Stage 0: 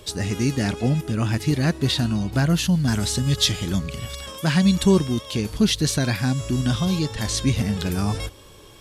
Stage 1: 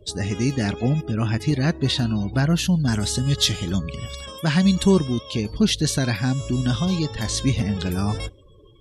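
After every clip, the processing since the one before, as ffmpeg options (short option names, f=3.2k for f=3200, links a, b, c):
-af "afftdn=nr=31:nf=-41"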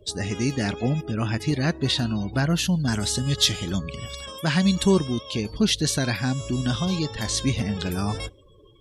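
-af "lowshelf=f=270:g=-4.5"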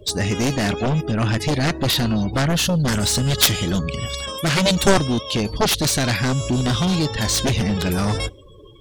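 -af "aeval=exprs='0.562*(cos(1*acos(clip(val(0)/0.562,-1,1)))-cos(1*PI/2))+0.224*(cos(7*acos(clip(val(0)/0.562,-1,1)))-cos(7*PI/2))':c=same,volume=3.5dB"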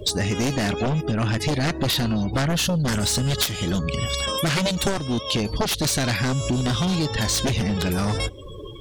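-af "acompressor=threshold=-30dB:ratio=5,volume=8dB"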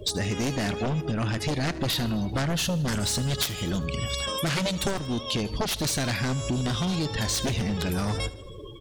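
-af "aecho=1:1:78|156|234|312|390:0.126|0.0705|0.0395|0.0221|0.0124,volume=-4.5dB"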